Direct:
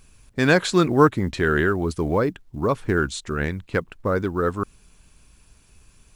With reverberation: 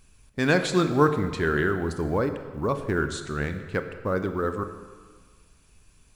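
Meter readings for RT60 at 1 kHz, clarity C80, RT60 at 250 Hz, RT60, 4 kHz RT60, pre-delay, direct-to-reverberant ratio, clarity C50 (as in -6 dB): 1.6 s, 10.5 dB, 1.6 s, 1.6 s, 1.2 s, 24 ms, 8.0 dB, 9.5 dB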